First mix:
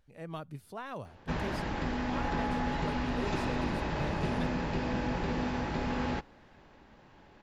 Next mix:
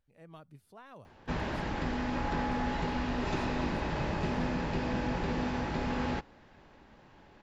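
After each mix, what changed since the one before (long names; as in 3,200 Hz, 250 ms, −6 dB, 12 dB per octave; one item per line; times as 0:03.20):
speech −10.5 dB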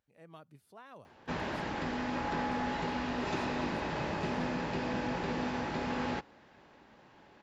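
master: add high-pass filter 190 Hz 6 dB per octave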